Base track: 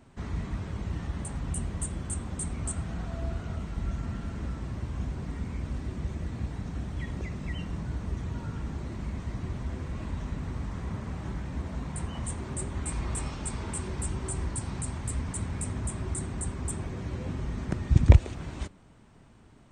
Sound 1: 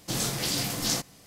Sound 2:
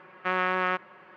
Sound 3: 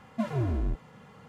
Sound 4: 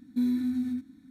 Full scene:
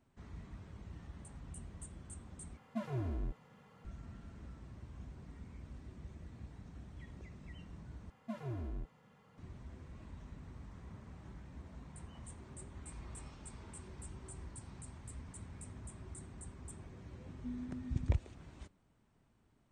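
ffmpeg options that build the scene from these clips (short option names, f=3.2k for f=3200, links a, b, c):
-filter_complex "[3:a]asplit=2[a][b];[0:a]volume=-16.5dB[c];[4:a]aresample=8000,aresample=44100[d];[c]asplit=3[e][f][g];[e]atrim=end=2.574[h];[a]atrim=end=1.28,asetpts=PTS-STARTPTS,volume=-9.5dB[i];[f]atrim=start=3.846:end=8.104[j];[b]atrim=end=1.28,asetpts=PTS-STARTPTS,volume=-13dB[k];[g]atrim=start=9.376[l];[d]atrim=end=1.1,asetpts=PTS-STARTPTS,volume=-17dB,afade=t=in:d=0.004:c=hsin,afade=t=out:st=1.096:d=0.004:c=hsin,adelay=17280[m];[h][i]acrossfade=d=0.004:c1=hsin:c2=hsin[n];[n][j]acrossfade=d=0.004:c1=hsin:c2=hsin[o];[o][k]acrossfade=d=0.004:c1=hsin:c2=hsin[p];[p][l]acrossfade=d=0.004:c1=hsin:c2=hsin[q];[q][m]amix=inputs=2:normalize=0"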